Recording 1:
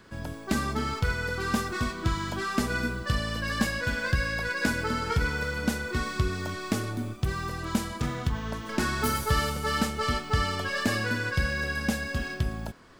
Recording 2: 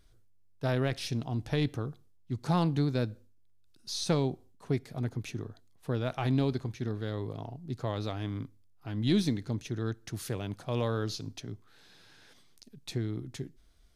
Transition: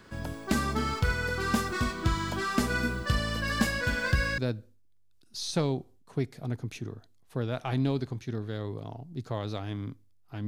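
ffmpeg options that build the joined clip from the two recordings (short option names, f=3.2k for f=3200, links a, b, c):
-filter_complex "[0:a]apad=whole_dur=10.47,atrim=end=10.47,atrim=end=4.382[a];[1:a]atrim=start=2.908:end=9[b];[a][b]acrossfade=d=0.004:c1=hsin:c2=hsin"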